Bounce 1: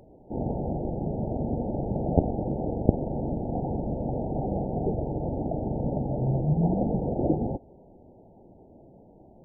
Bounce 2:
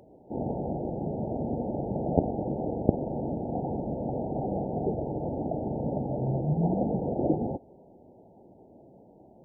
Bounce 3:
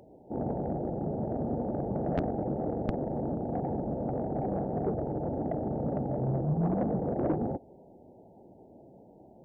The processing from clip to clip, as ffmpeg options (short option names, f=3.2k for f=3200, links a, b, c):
-af "highpass=f=150:p=1"
-af "asoftclip=type=tanh:threshold=-21dB"